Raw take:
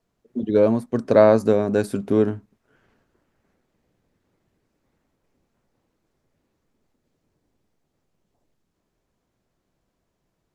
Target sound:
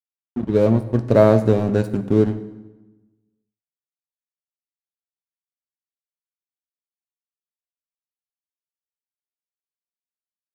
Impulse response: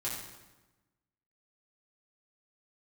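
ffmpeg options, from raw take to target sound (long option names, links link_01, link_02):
-filter_complex "[0:a]aeval=exprs='sgn(val(0))*max(abs(val(0))-0.0211,0)':channel_layout=same,lowshelf=frequency=240:gain=11.5,asplit=2[link_01][link_02];[1:a]atrim=start_sample=2205[link_03];[link_02][link_03]afir=irnorm=-1:irlink=0,volume=-10.5dB[link_04];[link_01][link_04]amix=inputs=2:normalize=0,volume=-3dB"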